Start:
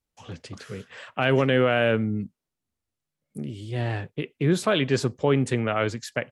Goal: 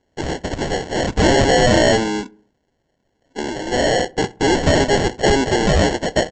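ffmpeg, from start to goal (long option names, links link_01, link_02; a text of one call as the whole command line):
ffmpeg -i in.wav -filter_complex "[0:a]highpass=frequency=290:width=0.5412,highpass=frequency=290:width=1.3066,equalizer=frequency=1200:width=0.87:gain=7,asplit=2[link_01][link_02];[link_02]highpass=frequency=720:poles=1,volume=25dB,asoftclip=type=tanh:threshold=-12dB[link_03];[link_01][link_03]amix=inputs=2:normalize=0,lowpass=frequency=6000:poles=1,volume=-6dB,aresample=16000,acrusher=samples=13:mix=1:aa=0.000001,aresample=44100,asplit=2[link_04][link_05];[link_05]adelay=66,lowpass=frequency=1400:poles=1,volume=-22.5dB,asplit=2[link_06][link_07];[link_07]adelay=66,lowpass=frequency=1400:poles=1,volume=0.53,asplit=2[link_08][link_09];[link_09]adelay=66,lowpass=frequency=1400:poles=1,volume=0.53,asplit=2[link_10][link_11];[link_11]adelay=66,lowpass=frequency=1400:poles=1,volume=0.53[link_12];[link_04][link_06][link_08][link_10][link_12]amix=inputs=5:normalize=0,volume=3.5dB" out.wav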